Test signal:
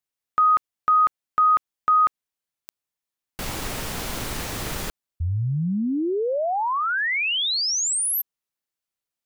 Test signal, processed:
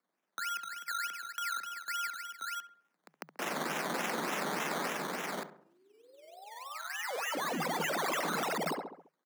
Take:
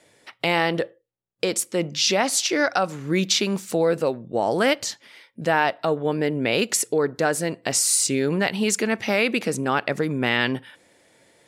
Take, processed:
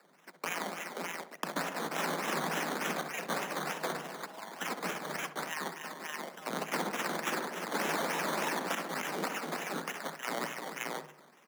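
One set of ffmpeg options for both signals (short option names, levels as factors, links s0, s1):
-filter_complex "[0:a]tremolo=f=21:d=0.519,highpass=f=1100:p=1,aderivative,asplit=2[s0][s1];[s1]aecho=0:1:64|194|253|348|382|531:0.237|0.224|0.335|0.224|0.112|0.668[s2];[s0][s2]amix=inputs=2:normalize=0,acrusher=samples=14:mix=1:aa=0.000001:lfo=1:lforange=8.4:lforate=3.4,asplit=2[s3][s4];[s4]adelay=68,lowpass=f=1600:p=1,volume=0.237,asplit=2[s5][s6];[s6]adelay=68,lowpass=f=1600:p=1,volume=0.5,asplit=2[s7][s8];[s8]adelay=68,lowpass=f=1600:p=1,volume=0.5,asplit=2[s9][s10];[s10]adelay=68,lowpass=f=1600:p=1,volume=0.5,asplit=2[s11][s12];[s12]adelay=68,lowpass=f=1600:p=1,volume=0.5[s13];[s5][s7][s9][s11][s13]amix=inputs=5:normalize=0[s14];[s3][s14]amix=inputs=2:normalize=0,acompressor=threshold=0.0126:ratio=6:attack=20:release=29:knee=6:detection=peak,afreqshift=150,volume=1.26"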